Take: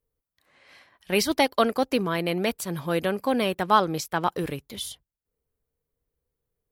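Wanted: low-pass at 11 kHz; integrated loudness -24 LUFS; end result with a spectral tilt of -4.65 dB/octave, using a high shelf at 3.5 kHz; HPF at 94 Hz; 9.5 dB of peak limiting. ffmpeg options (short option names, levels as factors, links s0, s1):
-af "highpass=94,lowpass=11000,highshelf=f=3500:g=-8.5,volume=1.88,alimiter=limit=0.266:level=0:latency=1"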